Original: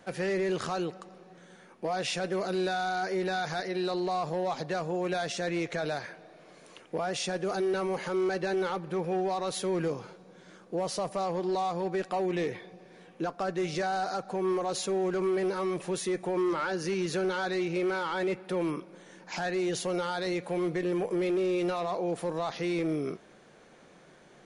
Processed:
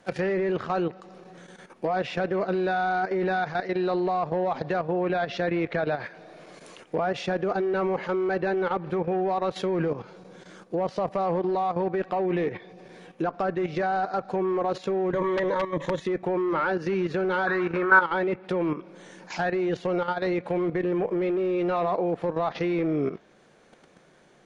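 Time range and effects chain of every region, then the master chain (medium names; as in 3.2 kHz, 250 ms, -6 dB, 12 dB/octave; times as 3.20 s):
4.77–6.10 s: low-pass 5.2 kHz 24 dB/octave + word length cut 10-bit, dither none
15.12–16.01 s: rippled EQ curve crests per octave 1.1, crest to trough 14 dB + integer overflow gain 21.5 dB
17.47–18.01 s: high-order bell 1.3 kHz +14 dB 1.1 oct + hum notches 50/100/150/200/250/300/350/400/450 Hz
whole clip: low-pass that closes with the level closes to 2.2 kHz, closed at -28.5 dBFS; level held to a coarse grid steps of 11 dB; trim +8 dB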